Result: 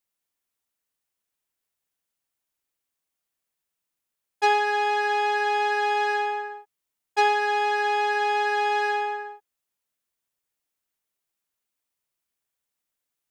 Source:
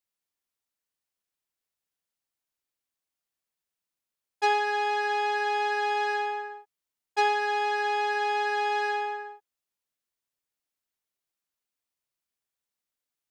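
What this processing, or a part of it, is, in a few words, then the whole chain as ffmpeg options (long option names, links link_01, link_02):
exciter from parts: -filter_complex "[0:a]asplit=2[link_01][link_02];[link_02]highpass=frequency=4200:width=0.5412,highpass=frequency=4200:width=1.3066,asoftclip=type=tanh:threshold=-39dB,volume=-12dB[link_03];[link_01][link_03]amix=inputs=2:normalize=0,volume=3.5dB"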